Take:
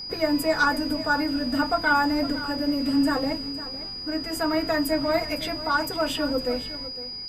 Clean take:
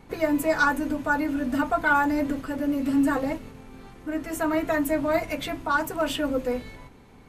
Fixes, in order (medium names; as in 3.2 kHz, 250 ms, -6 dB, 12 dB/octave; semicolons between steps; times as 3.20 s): band-stop 4.9 kHz, Q 30; inverse comb 507 ms -14.5 dB